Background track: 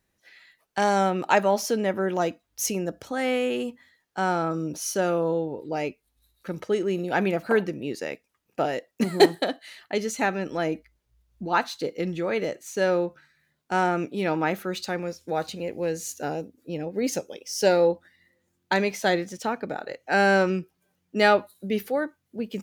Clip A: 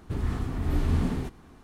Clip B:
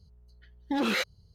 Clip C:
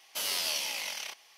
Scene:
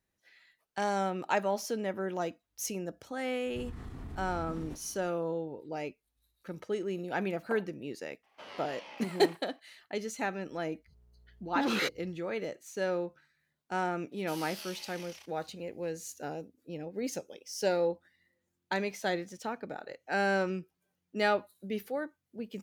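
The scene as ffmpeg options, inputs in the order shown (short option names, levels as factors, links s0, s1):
-filter_complex "[3:a]asplit=2[s0][s1];[0:a]volume=0.355[s2];[1:a]acompressor=threshold=0.0316:ratio=6:attack=3.2:release=140:knee=1:detection=peak[s3];[s0]lowpass=1500[s4];[2:a]highpass=59[s5];[s3]atrim=end=1.63,asetpts=PTS-STARTPTS,volume=0.376,afade=t=in:d=0.004:c=hsin,afade=t=out:st=1.626:d=0.004:c=hsin,adelay=3460[s6];[s4]atrim=end=1.37,asetpts=PTS-STARTPTS,volume=0.631,afade=t=in:d=0.004:c=hsin,afade=t=out:st=1.366:d=0.004:c=hsin,adelay=8230[s7];[s5]atrim=end=1.34,asetpts=PTS-STARTPTS,volume=0.708,afade=t=in:d=0.05,afade=t=out:st=1.29:d=0.05,adelay=10850[s8];[s1]atrim=end=1.37,asetpts=PTS-STARTPTS,volume=0.211,afade=t=in:d=0.004:c=hsin,afade=t=out:st=1.366:d=0.004:c=hsin,adelay=622692S[s9];[s2][s6][s7][s8][s9]amix=inputs=5:normalize=0"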